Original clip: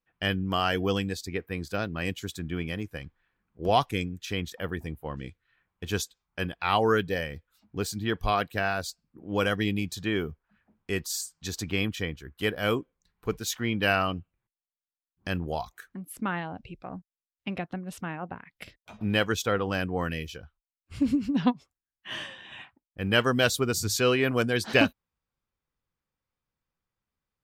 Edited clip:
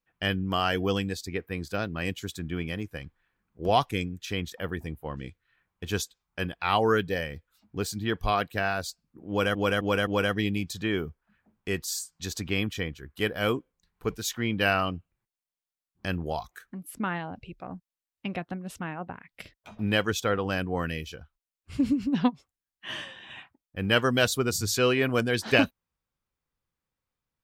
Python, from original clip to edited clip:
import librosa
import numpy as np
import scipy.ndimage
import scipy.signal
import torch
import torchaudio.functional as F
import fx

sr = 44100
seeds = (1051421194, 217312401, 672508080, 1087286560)

y = fx.edit(x, sr, fx.repeat(start_s=9.29, length_s=0.26, count=4), tone=tone)